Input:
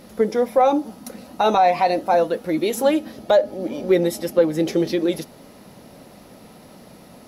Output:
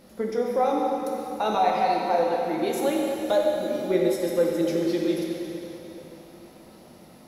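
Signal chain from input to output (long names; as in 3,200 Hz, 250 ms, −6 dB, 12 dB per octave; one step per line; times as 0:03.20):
0:03.22–0:03.89: high-shelf EQ 7,800 Hz +12 dB
dense smooth reverb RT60 3.4 s, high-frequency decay 0.95×, DRR −1.5 dB
level −8.5 dB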